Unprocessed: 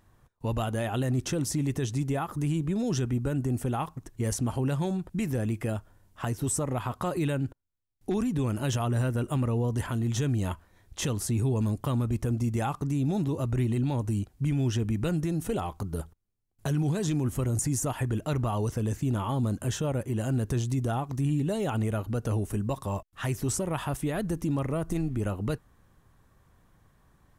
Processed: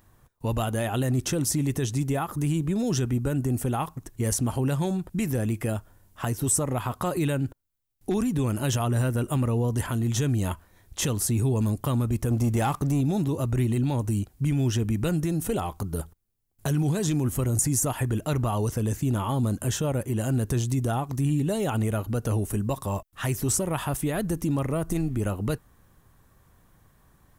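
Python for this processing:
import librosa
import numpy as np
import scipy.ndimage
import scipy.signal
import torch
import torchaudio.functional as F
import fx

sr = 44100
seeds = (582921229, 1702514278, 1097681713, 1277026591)

y = fx.leveller(x, sr, passes=1, at=(12.31, 13.01))
y = fx.high_shelf(y, sr, hz=10000.0, db=11.0)
y = y * 10.0 ** (2.5 / 20.0)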